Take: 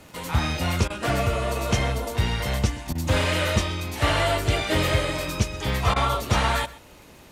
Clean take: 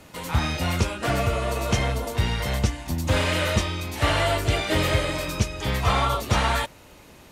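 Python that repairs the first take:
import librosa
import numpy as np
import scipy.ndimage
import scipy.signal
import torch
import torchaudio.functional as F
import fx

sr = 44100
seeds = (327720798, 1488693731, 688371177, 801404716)

y = fx.fix_declick_ar(x, sr, threshold=6.5)
y = fx.fix_interpolate(y, sr, at_s=(0.88, 2.93, 5.94), length_ms=20.0)
y = fx.fix_echo_inverse(y, sr, delay_ms=128, level_db=-19.5)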